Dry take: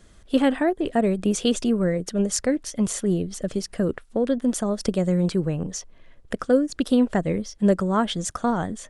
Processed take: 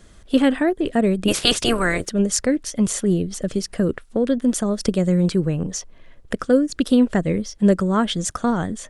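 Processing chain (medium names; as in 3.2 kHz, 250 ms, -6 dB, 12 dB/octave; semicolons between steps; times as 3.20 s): 1.27–2.05 s: spectral peaks clipped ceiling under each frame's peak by 26 dB; dynamic bell 790 Hz, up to -5 dB, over -37 dBFS, Q 1.3; trim +4 dB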